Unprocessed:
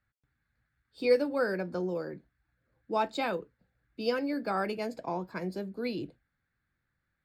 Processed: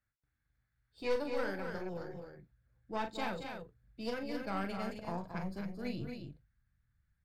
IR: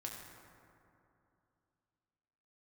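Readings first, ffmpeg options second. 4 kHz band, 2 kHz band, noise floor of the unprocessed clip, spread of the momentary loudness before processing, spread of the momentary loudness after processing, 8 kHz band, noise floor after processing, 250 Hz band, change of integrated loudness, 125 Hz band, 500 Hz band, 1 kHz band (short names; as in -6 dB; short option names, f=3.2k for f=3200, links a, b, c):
-5.5 dB, -5.5 dB, -82 dBFS, 12 LU, 12 LU, n/a, -84 dBFS, -5.5 dB, -7.5 dB, -1.5 dB, -8.5 dB, -6.5 dB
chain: -af "asubboost=boost=8.5:cutoff=120,aeval=exprs='(tanh(17.8*val(0)+0.75)-tanh(0.75))/17.8':c=same,aecho=1:1:40.82|224.5|265.3:0.398|0.355|0.447,volume=-3.5dB"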